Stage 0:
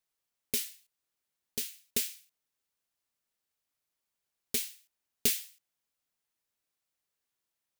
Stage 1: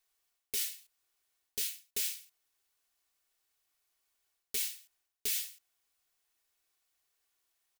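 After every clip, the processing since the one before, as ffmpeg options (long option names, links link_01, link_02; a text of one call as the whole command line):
ffmpeg -i in.wav -af "equalizer=frequency=180:width_type=o:width=2.3:gain=-9,aecho=1:1:2.7:0.39,areverse,acompressor=threshold=-37dB:ratio=10,areverse,volume=6dB" out.wav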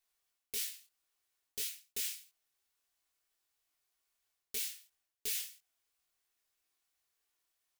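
ffmpeg -i in.wav -af "flanger=delay=17.5:depth=6.4:speed=3" out.wav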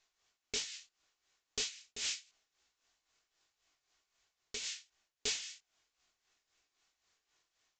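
ffmpeg -i in.wav -af "aresample=16000,asoftclip=type=tanh:threshold=-38dB,aresample=44100,tremolo=f=3.8:d=0.68,volume=10.5dB" out.wav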